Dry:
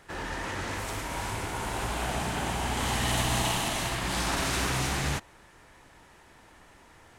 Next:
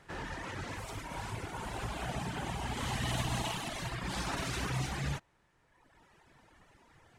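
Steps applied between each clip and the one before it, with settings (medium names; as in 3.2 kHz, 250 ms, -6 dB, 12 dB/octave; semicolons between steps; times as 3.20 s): treble shelf 9.2 kHz -8.5 dB; reverb removal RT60 1.5 s; peaking EQ 140 Hz +5.5 dB 0.82 oct; trim -4.5 dB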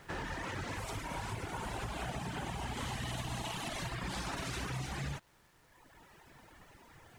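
compression, threshold -40 dBFS, peak gain reduction 10.5 dB; word length cut 12-bit, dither none; trim +4 dB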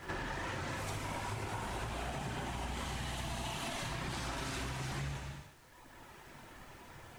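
pre-echo 71 ms -14 dB; gated-style reverb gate 400 ms falling, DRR 2.5 dB; compression, threshold -39 dBFS, peak gain reduction 7.5 dB; trim +3 dB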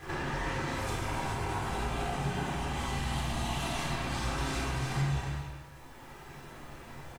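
speakerphone echo 270 ms, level -8 dB; simulated room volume 880 m³, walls furnished, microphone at 3.7 m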